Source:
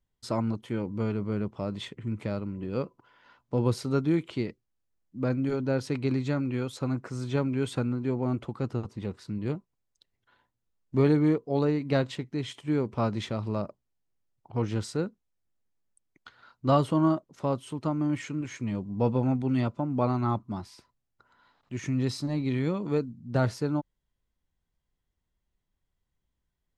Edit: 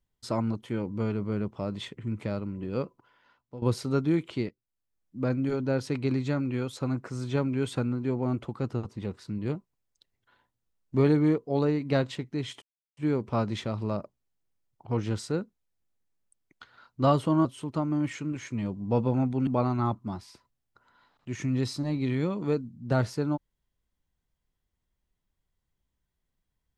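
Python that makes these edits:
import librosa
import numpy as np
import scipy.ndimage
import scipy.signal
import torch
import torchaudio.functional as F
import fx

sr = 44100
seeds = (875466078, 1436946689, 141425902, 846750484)

y = fx.edit(x, sr, fx.fade_out_to(start_s=2.83, length_s=0.79, floor_db=-17.5),
    fx.fade_in_from(start_s=4.49, length_s=0.69, floor_db=-16.0),
    fx.insert_silence(at_s=12.62, length_s=0.35),
    fx.cut(start_s=17.1, length_s=0.44),
    fx.cut(start_s=19.56, length_s=0.35), tone=tone)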